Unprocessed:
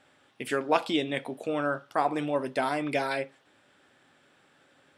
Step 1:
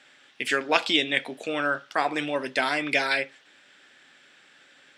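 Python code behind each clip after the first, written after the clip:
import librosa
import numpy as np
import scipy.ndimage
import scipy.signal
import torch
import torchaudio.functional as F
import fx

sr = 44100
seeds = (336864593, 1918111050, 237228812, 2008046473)

y = scipy.signal.sosfilt(scipy.signal.butter(2, 160.0, 'highpass', fs=sr, output='sos'), x)
y = fx.band_shelf(y, sr, hz=3400.0, db=10.5, octaves=2.6)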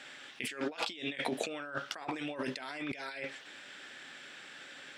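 y = fx.over_compress(x, sr, threshold_db=-37.0, ratio=-1.0)
y = y * 10.0 ** (-3.0 / 20.0)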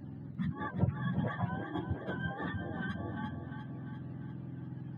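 y = fx.octave_mirror(x, sr, pivot_hz=680.0)
y = fx.echo_feedback(y, sr, ms=348, feedback_pct=56, wet_db=-8.0)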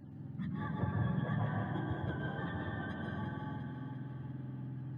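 y = fx.rev_plate(x, sr, seeds[0], rt60_s=1.8, hf_ratio=0.85, predelay_ms=110, drr_db=-2.0)
y = y * 10.0 ** (-5.5 / 20.0)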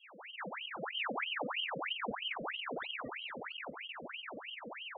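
y = fx.spec_topn(x, sr, count=1)
y = fx.echo_bbd(y, sr, ms=226, stages=2048, feedback_pct=80, wet_db=-4)
y = fx.ring_lfo(y, sr, carrier_hz=1700.0, swing_pct=80, hz=3.1)
y = y * 10.0 ** (5.5 / 20.0)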